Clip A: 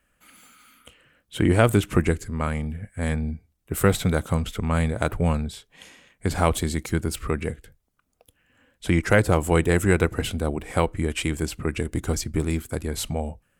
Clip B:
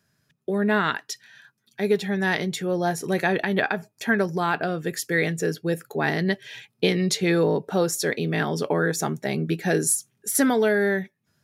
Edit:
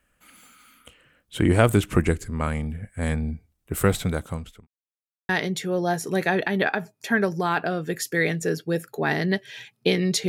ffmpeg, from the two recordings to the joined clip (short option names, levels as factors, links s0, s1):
-filter_complex "[0:a]apad=whole_dur=10.28,atrim=end=10.28,asplit=2[s0][s1];[s0]atrim=end=4.67,asetpts=PTS-STARTPTS,afade=t=out:st=3.47:d=1.2:c=qsin[s2];[s1]atrim=start=4.67:end=5.29,asetpts=PTS-STARTPTS,volume=0[s3];[1:a]atrim=start=2.26:end=7.25,asetpts=PTS-STARTPTS,afade=t=in:d=0.004:c=hsin[s4];[s2][s3][s4]concat=n=3:v=0:a=1"